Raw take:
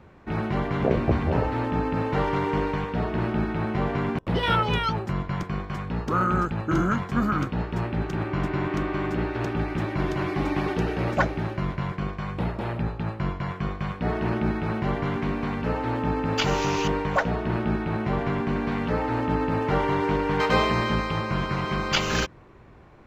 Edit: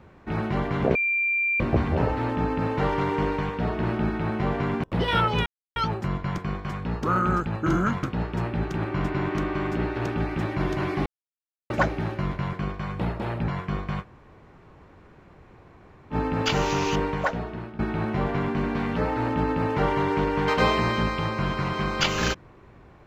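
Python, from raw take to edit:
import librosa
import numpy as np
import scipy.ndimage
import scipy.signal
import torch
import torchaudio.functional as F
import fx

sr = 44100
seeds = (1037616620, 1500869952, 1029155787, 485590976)

y = fx.edit(x, sr, fx.insert_tone(at_s=0.95, length_s=0.65, hz=2370.0, db=-21.0),
    fx.insert_silence(at_s=4.81, length_s=0.3),
    fx.cut(start_s=7.08, length_s=0.34),
    fx.silence(start_s=10.45, length_s=0.64),
    fx.cut(start_s=12.87, length_s=0.53),
    fx.room_tone_fill(start_s=13.94, length_s=2.11, crossfade_s=0.06),
    fx.fade_out_to(start_s=16.97, length_s=0.74, floor_db=-18.0), tone=tone)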